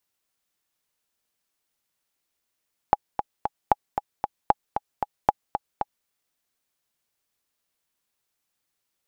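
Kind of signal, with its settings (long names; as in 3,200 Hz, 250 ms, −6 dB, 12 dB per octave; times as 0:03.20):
click track 229 BPM, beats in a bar 3, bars 4, 829 Hz, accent 8 dB −3 dBFS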